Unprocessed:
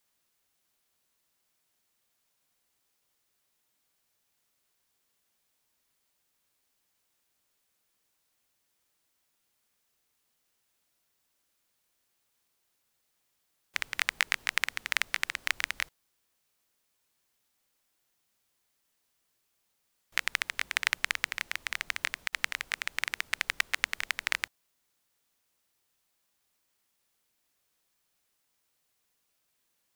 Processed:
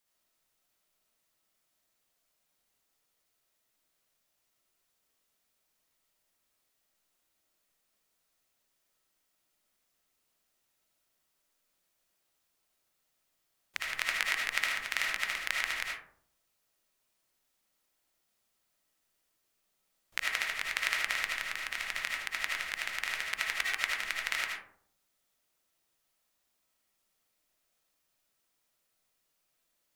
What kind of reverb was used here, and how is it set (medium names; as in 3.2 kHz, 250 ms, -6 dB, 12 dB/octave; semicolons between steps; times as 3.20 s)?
algorithmic reverb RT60 0.65 s, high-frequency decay 0.35×, pre-delay 35 ms, DRR -2.5 dB; trim -5 dB